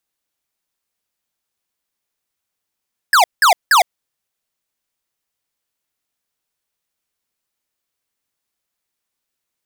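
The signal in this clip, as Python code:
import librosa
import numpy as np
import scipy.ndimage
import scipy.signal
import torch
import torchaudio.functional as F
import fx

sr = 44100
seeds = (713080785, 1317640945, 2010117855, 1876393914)

y = fx.laser_zaps(sr, level_db=-10.0, start_hz=1800.0, end_hz=650.0, length_s=0.11, wave='square', shots=3, gap_s=0.18)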